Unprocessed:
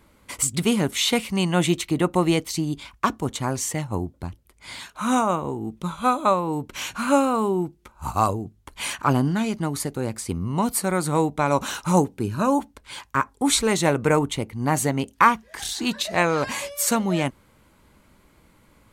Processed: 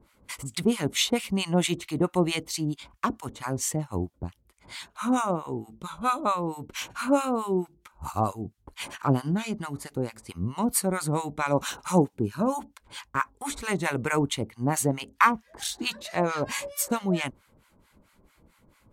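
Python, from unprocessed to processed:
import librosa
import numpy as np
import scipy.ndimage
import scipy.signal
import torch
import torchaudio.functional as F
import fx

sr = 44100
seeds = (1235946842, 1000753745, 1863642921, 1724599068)

y = fx.harmonic_tremolo(x, sr, hz=4.5, depth_pct=100, crossover_hz=890.0)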